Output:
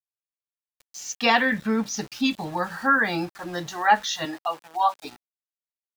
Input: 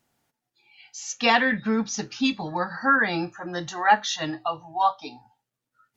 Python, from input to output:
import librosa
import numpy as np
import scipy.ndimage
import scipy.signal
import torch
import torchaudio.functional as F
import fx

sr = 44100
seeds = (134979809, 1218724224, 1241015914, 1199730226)

y = np.where(np.abs(x) >= 10.0 ** (-40.5 / 20.0), x, 0.0)
y = fx.highpass(y, sr, hz=290.0, slope=12, at=(4.25, 5.05))